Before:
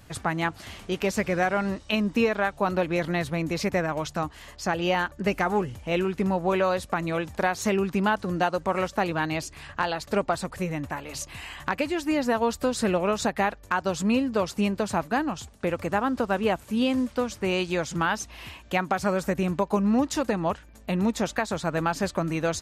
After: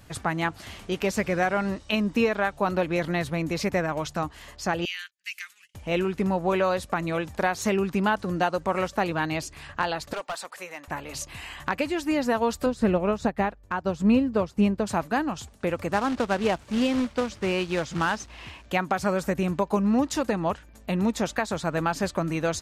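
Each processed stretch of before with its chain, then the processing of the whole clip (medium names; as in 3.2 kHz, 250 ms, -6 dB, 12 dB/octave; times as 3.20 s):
4.85–5.75 s: inverse Chebyshev high-pass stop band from 830 Hz, stop band 50 dB + gate -52 dBFS, range -29 dB + upward compressor, threshold -52 dBFS
10.13–10.88 s: high-pass 740 Hz + overload inside the chain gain 27 dB
12.66–14.87 s: tilt EQ -2 dB/octave + upward expansion, over -40 dBFS
15.93–18.66 s: companded quantiser 4-bit + distance through air 78 m
whole clip: none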